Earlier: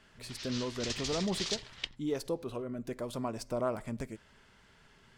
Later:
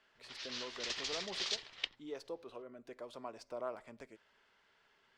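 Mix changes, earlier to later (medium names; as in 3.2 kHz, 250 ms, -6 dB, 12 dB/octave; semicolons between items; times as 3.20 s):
speech -7.5 dB; master: add three-band isolator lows -17 dB, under 340 Hz, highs -14 dB, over 5.9 kHz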